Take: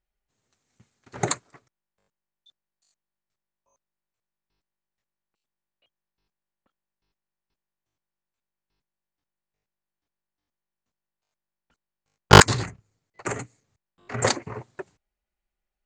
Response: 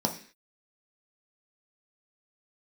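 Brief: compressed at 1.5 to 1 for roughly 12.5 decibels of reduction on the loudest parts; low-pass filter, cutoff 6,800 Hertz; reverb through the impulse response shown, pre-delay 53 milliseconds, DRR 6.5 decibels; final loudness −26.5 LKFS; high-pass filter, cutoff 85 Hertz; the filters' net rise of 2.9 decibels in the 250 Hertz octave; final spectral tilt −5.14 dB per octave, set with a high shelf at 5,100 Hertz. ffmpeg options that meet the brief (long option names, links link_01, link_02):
-filter_complex "[0:a]highpass=85,lowpass=6800,equalizer=frequency=250:width_type=o:gain=5,highshelf=frequency=5100:gain=-4.5,acompressor=threshold=-40dB:ratio=1.5,asplit=2[link_01][link_02];[1:a]atrim=start_sample=2205,adelay=53[link_03];[link_02][link_03]afir=irnorm=-1:irlink=0,volume=-15dB[link_04];[link_01][link_04]amix=inputs=2:normalize=0,volume=5dB"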